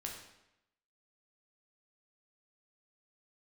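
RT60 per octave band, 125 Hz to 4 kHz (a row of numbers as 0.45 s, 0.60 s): 0.85 s, 0.90 s, 0.85 s, 0.85 s, 0.85 s, 0.75 s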